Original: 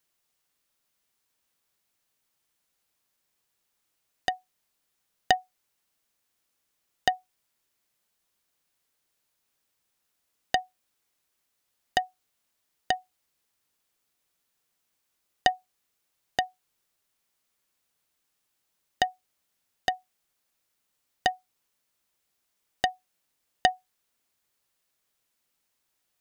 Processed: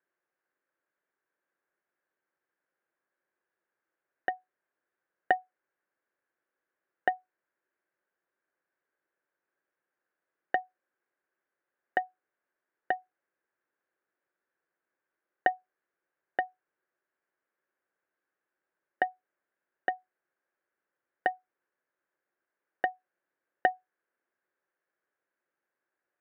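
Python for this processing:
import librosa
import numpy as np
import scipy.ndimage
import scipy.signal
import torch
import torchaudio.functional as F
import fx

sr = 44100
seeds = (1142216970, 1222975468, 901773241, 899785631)

y = fx.cabinet(x, sr, low_hz=200.0, low_slope=12, high_hz=2000.0, hz=(220.0, 360.0, 540.0, 1600.0), db=(-4, 8, 6, 10))
y = y * 10.0 ** (-4.5 / 20.0)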